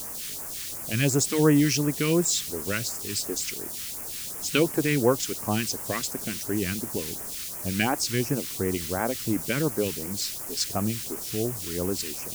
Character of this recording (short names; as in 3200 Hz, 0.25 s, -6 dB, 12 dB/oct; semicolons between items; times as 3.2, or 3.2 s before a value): a quantiser's noise floor 6-bit, dither triangular; phasing stages 2, 2.8 Hz, lowest notch 660–3600 Hz